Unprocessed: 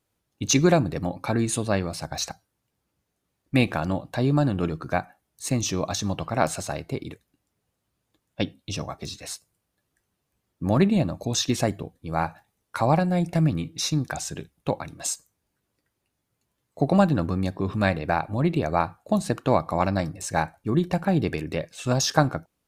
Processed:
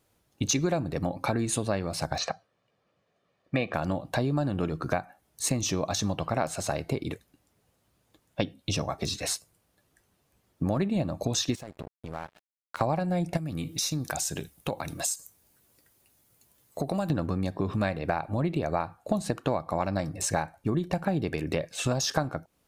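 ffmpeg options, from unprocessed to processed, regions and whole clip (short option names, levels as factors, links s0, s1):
-filter_complex "[0:a]asettb=1/sr,asplit=3[s0][s1][s2];[s0]atrim=end=2.184[s3];[s1]atrim=start=2.18:end=3.74,asetpts=PTS-STARTPTS,afade=t=in:d=0.004:c=qsin,afade=t=out:st=1.556:d=0.004:c=qsin,highpass=180,lowpass=3400,aecho=1:1:1.7:0.48,atrim=end_sample=68796[s4];[s2]atrim=start=3.736[s5];[s3][s4]acrossfade=d=0.004:c1=hsin:c2=qsin[s6];[s6][s5]acrossfade=d=0.004:c1=qsin:c2=hsin,asettb=1/sr,asplit=3[s7][s8][s9];[s7]atrim=end=11.554[s10];[s8]atrim=start=11.55:end=12.81,asetpts=PTS-STARTPTS,afade=t=in:d=0.004:c=qsin,afade=t=out:st=1.256:d=0.004:c=qsin,acompressor=threshold=0.0112:ratio=5:attack=3.2:release=140:knee=1:detection=peak,aeval=exprs='sgn(val(0))*max(abs(val(0))-0.00398,0)':c=same[s11];[s9]atrim=start=12.806[s12];[s10][s11]acrossfade=d=0.004:c1=hsin:c2=qsin[s13];[s13][s12]acrossfade=d=0.004:c1=qsin:c2=hsin,asettb=1/sr,asplit=3[s14][s15][s16];[s14]atrim=end=13.374[s17];[s15]atrim=start=13.37:end=17.1,asetpts=PTS-STARTPTS,afade=t=in:d=0.004:c=qsin,afade=t=out:st=3.726:d=0.004:c=qsin,aemphasis=mode=production:type=50kf,acompressor=threshold=0.01:ratio=2:attack=3.2:release=140:knee=1:detection=peak[s18];[s16]atrim=start=17.096[s19];[s17][s18]acrossfade=d=0.004:c1=hsin:c2=qsin[s20];[s20][s19]acrossfade=d=0.004:c1=qsin:c2=hsin,equalizer=f=610:w=1.5:g=2.5,acompressor=threshold=0.0251:ratio=5,volume=2.11"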